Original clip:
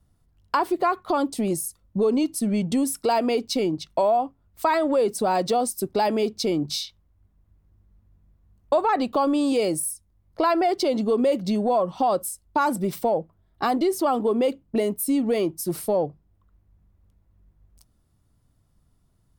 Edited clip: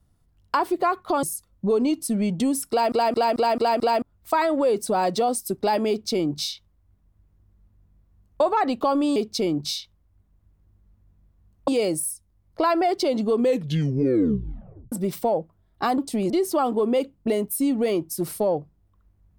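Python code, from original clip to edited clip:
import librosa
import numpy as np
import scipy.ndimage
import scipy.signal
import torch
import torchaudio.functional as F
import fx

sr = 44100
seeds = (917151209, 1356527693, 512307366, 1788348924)

y = fx.edit(x, sr, fx.move(start_s=1.23, length_s=0.32, to_s=13.78),
    fx.stutter_over(start_s=3.02, slice_s=0.22, count=6),
    fx.duplicate(start_s=6.21, length_s=2.52, to_s=9.48),
    fx.tape_stop(start_s=11.17, length_s=1.55), tone=tone)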